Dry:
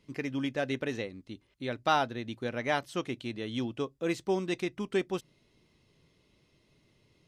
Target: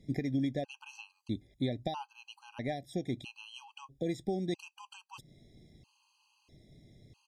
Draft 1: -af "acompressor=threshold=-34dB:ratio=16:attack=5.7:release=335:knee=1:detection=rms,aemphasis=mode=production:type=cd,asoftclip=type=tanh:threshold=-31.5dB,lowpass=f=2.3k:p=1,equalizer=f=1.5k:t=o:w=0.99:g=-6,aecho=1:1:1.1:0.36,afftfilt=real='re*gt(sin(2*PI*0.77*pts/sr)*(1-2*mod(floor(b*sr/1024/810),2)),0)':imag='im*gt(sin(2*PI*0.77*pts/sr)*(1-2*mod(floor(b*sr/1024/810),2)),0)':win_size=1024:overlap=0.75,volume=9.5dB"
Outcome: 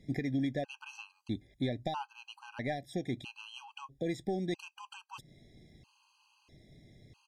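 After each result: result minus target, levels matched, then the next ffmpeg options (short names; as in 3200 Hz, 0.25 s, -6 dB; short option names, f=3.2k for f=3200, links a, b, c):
soft clip: distortion +20 dB; 2000 Hz band +4.0 dB
-af "acompressor=threshold=-34dB:ratio=16:attack=5.7:release=335:knee=1:detection=rms,aemphasis=mode=production:type=cd,asoftclip=type=tanh:threshold=-20dB,lowpass=f=2.3k:p=1,equalizer=f=1.5k:t=o:w=0.99:g=-6,aecho=1:1:1.1:0.36,afftfilt=real='re*gt(sin(2*PI*0.77*pts/sr)*(1-2*mod(floor(b*sr/1024/810),2)),0)':imag='im*gt(sin(2*PI*0.77*pts/sr)*(1-2*mod(floor(b*sr/1024/810),2)),0)':win_size=1024:overlap=0.75,volume=9.5dB"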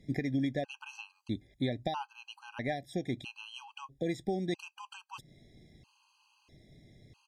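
2000 Hz band +4.5 dB
-af "acompressor=threshold=-34dB:ratio=16:attack=5.7:release=335:knee=1:detection=rms,aemphasis=mode=production:type=cd,asoftclip=type=tanh:threshold=-20dB,lowpass=f=2.3k:p=1,equalizer=f=1.5k:t=o:w=0.99:g=-15.5,aecho=1:1:1.1:0.36,afftfilt=real='re*gt(sin(2*PI*0.77*pts/sr)*(1-2*mod(floor(b*sr/1024/810),2)),0)':imag='im*gt(sin(2*PI*0.77*pts/sr)*(1-2*mod(floor(b*sr/1024/810),2)),0)':win_size=1024:overlap=0.75,volume=9.5dB"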